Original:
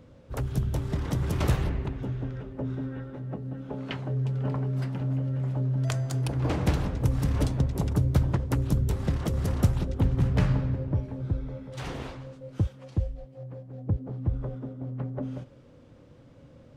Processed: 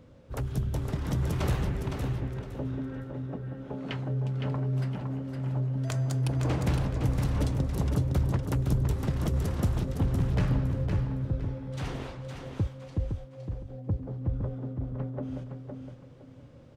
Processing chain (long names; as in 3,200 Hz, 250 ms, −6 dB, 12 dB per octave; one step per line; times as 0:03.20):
soft clipping −16 dBFS, distortion −19 dB
repeating echo 512 ms, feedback 27%, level −6 dB
level −1.5 dB